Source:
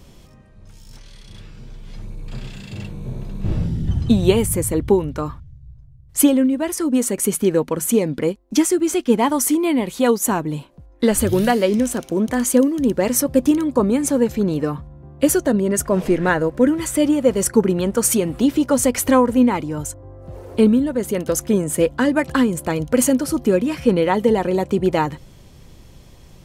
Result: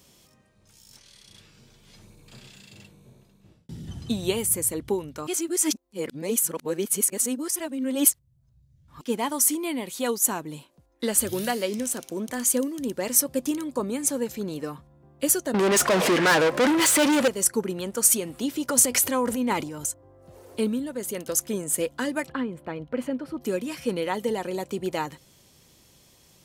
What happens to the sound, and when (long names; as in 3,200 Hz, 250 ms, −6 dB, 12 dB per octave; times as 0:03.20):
0:02.07–0:03.69: fade out
0:05.27–0:09.01: reverse
0:15.54–0:17.28: mid-hump overdrive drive 33 dB, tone 2,500 Hz, clips at −2.5 dBFS
0:18.68–0:19.89: transient designer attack −3 dB, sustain +9 dB
0:22.29–0:23.41: high-frequency loss of the air 460 metres
whole clip: high-pass filter 200 Hz 6 dB per octave; high-shelf EQ 3,400 Hz +11.5 dB; level −10 dB